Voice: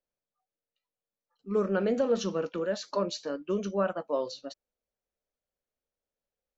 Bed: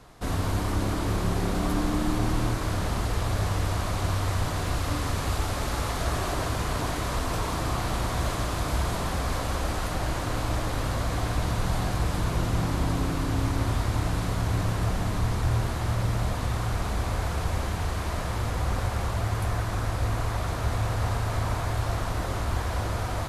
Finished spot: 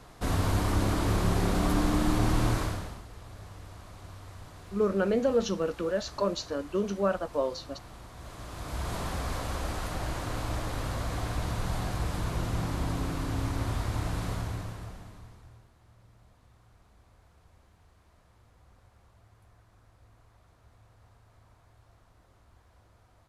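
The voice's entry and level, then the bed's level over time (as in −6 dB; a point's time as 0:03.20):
3.25 s, +1.0 dB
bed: 0:02.60 0 dB
0:03.05 −19.5 dB
0:08.14 −19.5 dB
0:08.95 −5 dB
0:14.33 −5 dB
0:15.70 −32.5 dB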